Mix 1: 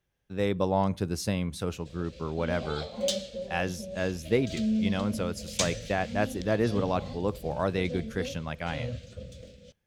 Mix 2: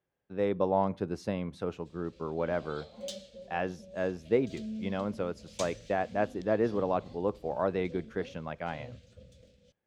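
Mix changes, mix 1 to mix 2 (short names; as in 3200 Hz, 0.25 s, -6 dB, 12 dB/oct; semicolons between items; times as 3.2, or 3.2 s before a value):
speech: add band-pass 570 Hz, Q 0.52; background -11.5 dB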